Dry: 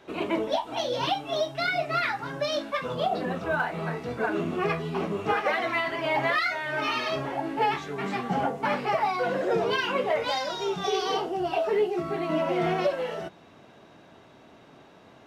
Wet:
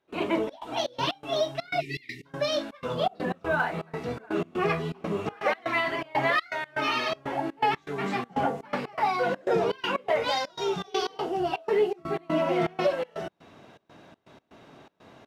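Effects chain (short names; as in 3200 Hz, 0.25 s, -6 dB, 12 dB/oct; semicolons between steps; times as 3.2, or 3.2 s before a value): spectral delete 1.8–2.26, 440–1800 Hz; step gate ".xxx.xx.x" 122 bpm -24 dB; gain +1 dB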